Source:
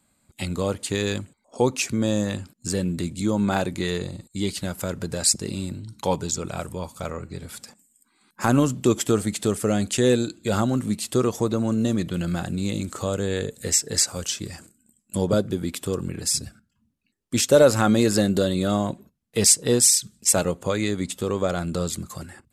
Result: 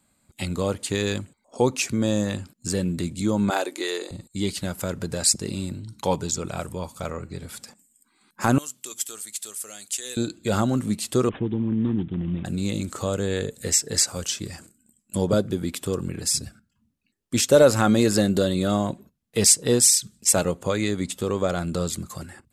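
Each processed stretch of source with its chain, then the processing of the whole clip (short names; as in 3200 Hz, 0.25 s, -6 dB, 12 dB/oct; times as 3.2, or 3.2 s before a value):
3.5–4.11 Chebyshev high-pass 310 Hz, order 4 + high shelf 4200 Hz +5 dB
8.58–10.17 differentiator + notches 60/120/180/240 Hz
11.29–12.45 G.711 law mismatch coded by A + inverse Chebyshev band-stop 960–2000 Hz, stop band 70 dB + careless resampling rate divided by 6×, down none, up filtered
whole clip: dry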